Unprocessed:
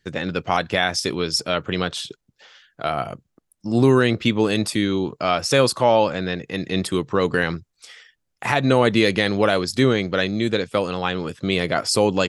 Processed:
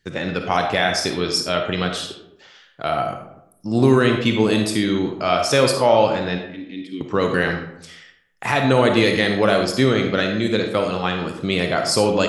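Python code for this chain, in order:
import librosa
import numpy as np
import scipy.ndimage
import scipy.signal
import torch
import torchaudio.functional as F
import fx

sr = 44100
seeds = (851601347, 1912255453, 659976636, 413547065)

y = fx.vowel_filter(x, sr, vowel='i', at=(6.38, 7.01))
y = fx.rev_freeverb(y, sr, rt60_s=0.77, hf_ratio=0.55, predelay_ms=10, drr_db=3.5)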